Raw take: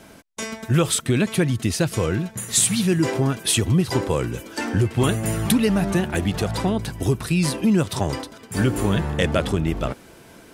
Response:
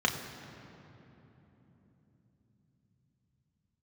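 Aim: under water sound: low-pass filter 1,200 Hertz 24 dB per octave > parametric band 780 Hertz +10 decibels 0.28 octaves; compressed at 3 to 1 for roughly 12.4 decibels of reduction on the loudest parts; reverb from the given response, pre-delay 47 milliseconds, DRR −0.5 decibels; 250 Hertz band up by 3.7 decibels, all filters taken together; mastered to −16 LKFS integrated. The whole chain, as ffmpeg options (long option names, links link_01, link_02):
-filter_complex "[0:a]equalizer=frequency=250:width_type=o:gain=5,acompressor=threshold=-28dB:ratio=3,asplit=2[link_01][link_02];[1:a]atrim=start_sample=2205,adelay=47[link_03];[link_02][link_03]afir=irnorm=-1:irlink=0,volume=-10.5dB[link_04];[link_01][link_04]amix=inputs=2:normalize=0,lowpass=frequency=1200:width=0.5412,lowpass=frequency=1200:width=1.3066,equalizer=frequency=780:width_type=o:width=0.28:gain=10,volume=9.5dB"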